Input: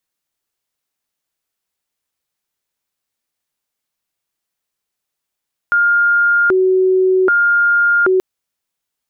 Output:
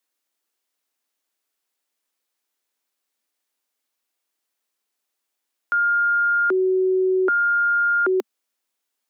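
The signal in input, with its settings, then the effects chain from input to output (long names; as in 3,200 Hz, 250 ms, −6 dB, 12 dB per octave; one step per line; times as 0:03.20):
siren hi-lo 374–1,410 Hz 0.64 per second sine −9.5 dBFS 2.48 s
brickwall limiter −16 dBFS
Butterworth high-pass 220 Hz 72 dB per octave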